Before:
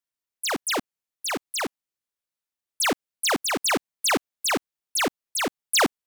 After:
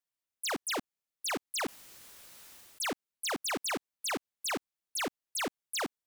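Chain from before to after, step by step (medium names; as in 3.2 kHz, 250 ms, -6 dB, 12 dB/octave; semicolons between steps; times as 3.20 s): peak limiter -29 dBFS, peak gain reduction 11 dB; 1.47–2.84 s: decay stretcher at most 24 dB/s; trim -3 dB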